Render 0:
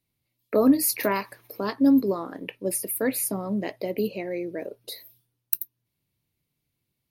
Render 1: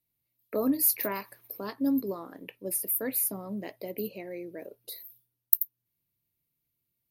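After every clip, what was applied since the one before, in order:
parametric band 14,000 Hz +14 dB 0.59 octaves
level −8.5 dB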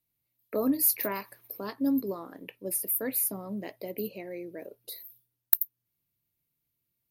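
hard clipping −4.5 dBFS, distortion −25 dB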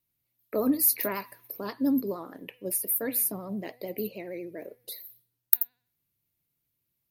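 hum removal 246.2 Hz, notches 19
pitch vibrato 13 Hz 63 cents
level +1.5 dB

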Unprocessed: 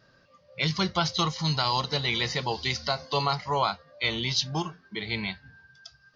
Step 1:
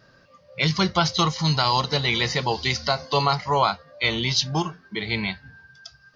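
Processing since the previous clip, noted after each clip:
parametric band 3,600 Hz −2 dB
level +5.5 dB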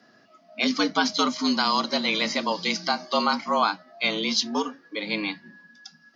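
frequency shifter +100 Hz
level −2 dB

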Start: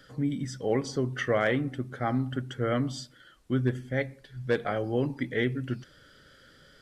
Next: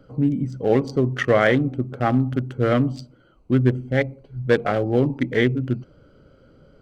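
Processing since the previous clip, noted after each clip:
adaptive Wiener filter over 25 samples
level +9 dB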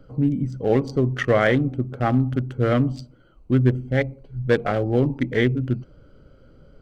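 low-shelf EQ 64 Hz +12 dB
level −1.5 dB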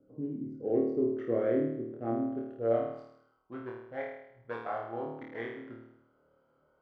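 flutter between parallel walls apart 4.5 metres, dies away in 0.77 s
band-pass filter sweep 360 Hz → 930 Hz, 0:02.03–0:03.21
level −7.5 dB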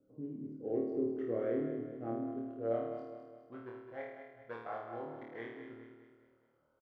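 repeating echo 207 ms, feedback 46%, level −8.5 dB
level −6.5 dB

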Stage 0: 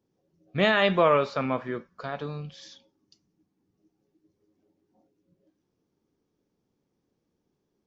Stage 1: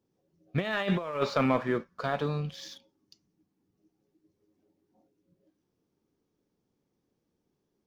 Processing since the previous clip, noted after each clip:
compressor whose output falls as the input rises −26 dBFS, ratio −0.5
leveller curve on the samples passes 1
level −3.5 dB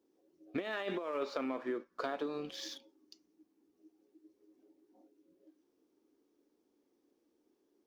low shelf with overshoot 210 Hz −12.5 dB, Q 3
downward compressor 16 to 1, threshold −33 dBFS, peak gain reduction 15 dB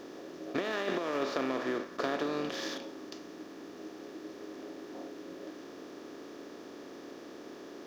compressor on every frequency bin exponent 0.4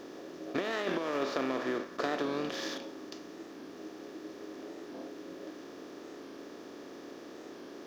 wow of a warped record 45 rpm, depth 100 cents

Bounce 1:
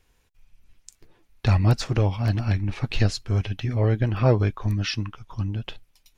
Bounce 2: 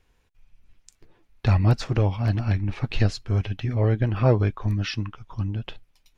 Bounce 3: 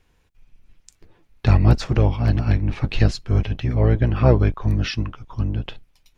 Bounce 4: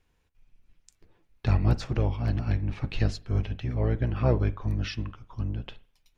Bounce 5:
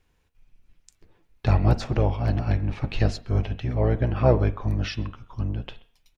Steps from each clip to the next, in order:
high-shelf EQ 5,300 Hz −9 dB
sub-octave generator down 1 octave, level −3 dB; level +3 dB
convolution reverb, pre-delay 40 ms, DRR 17 dB; level −8.5 dB
hum removal 232.5 Hz, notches 17; far-end echo of a speakerphone 130 ms, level −22 dB; dynamic equaliser 680 Hz, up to +6 dB, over −47 dBFS, Q 1.2; level +3 dB

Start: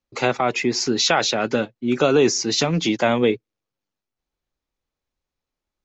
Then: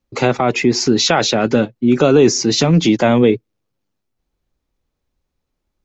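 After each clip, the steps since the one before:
low-shelf EQ 470 Hz +9 dB
in parallel at +2 dB: brickwall limiter −11 dBFS, peak gain reduction 9.5 dB
on the sum: level −3 dB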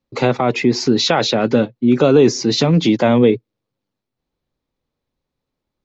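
octave-band graphic EQ 125/250/500/1,000/2,000/4,000 Hz +9/+7/+8/+7/+5/+9 dB
level −10.5 dB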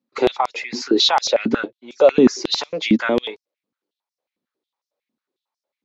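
high-pass on a step sequencer 11 Hz 230–5,400 Hz
level −6 dB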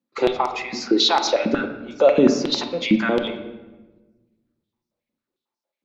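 convolution reverb RT60 1.2 s, pre-delay 6 ms, DRR 5.5 dB
level −2.5 dB

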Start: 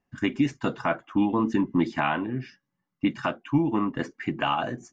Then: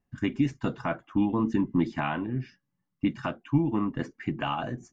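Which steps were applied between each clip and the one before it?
low-shelf EQ 180 Hz +11.5 dB
level −5.5 dB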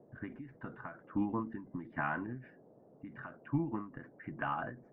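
transistor ladder low-pass 1,900 Hz, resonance 50%
noise in a band 120–640 Hz −62 dBFS
every ending faded ahead of time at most 120 dB per second
level +1 dB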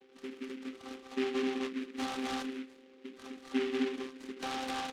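channel vocoder with a chord as carrier bare fifth, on C4
loudspeakers that aren't time-aligned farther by 27 metres −10 dB, 63 metres −9 dB, 88 metres 0 dB
short delay modulated by noise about 2,100 Hz, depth 0.12 ms

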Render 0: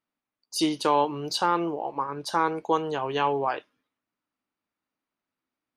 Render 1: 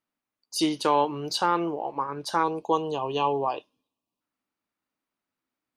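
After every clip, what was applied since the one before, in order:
gain on a spectral selection 0:02.43–0:04.21, 1,200–2,400 Hz −17 dB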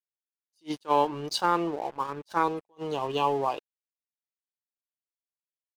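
dead-zone distortion −44 dBFS
level that may rise only so fast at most 470 dB per second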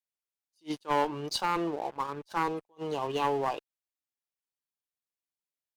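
asymmetric clip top −24 dBFS
level −1.5 dB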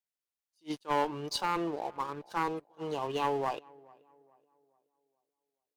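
tape delay 426 ms, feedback 44%, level −23 dB, low-pass 1,500 Hz
level −2 dB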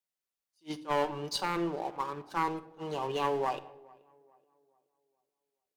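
convolution reverb, pre-delay 5 ms, DRR 9 dB

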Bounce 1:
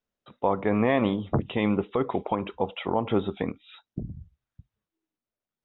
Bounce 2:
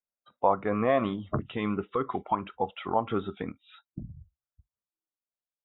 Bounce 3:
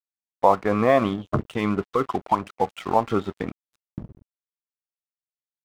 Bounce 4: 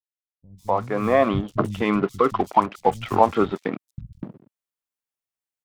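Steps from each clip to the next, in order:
noise reduction from a noise print of the clip's start 14 dB; flat-topped bell 890 Hz +8 dB; level −5.5 dB
dead-zone distortion −44.5 dBFS; level +7 dB
fade in at the beginning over 1.41 s; three-band delay without the direct sound lows, highs, mids 150/250 ms, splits 150/4,600 Hz; level +4 dB

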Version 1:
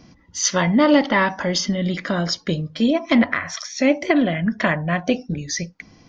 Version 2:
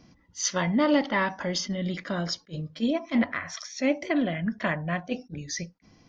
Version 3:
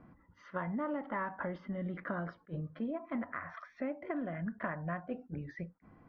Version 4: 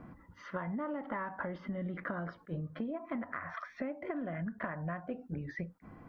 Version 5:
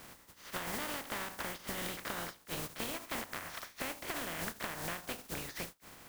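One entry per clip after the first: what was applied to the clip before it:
level that may rise only so fast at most 400 dB per second; level −7.5 dB
downward compressor 6 to 1, threshold −33 dBFS, peak gain reduction 14.5 dB; transistor ladder low-pass 1,700 Hz, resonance 40%; level +6 dB
downward compressor 4 to 1, threshold −43 dBFS, peak gain reduction 10 dB; level +7 dB
compressing power law on the bin magnitudes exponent 0.25; level −1.5 dB

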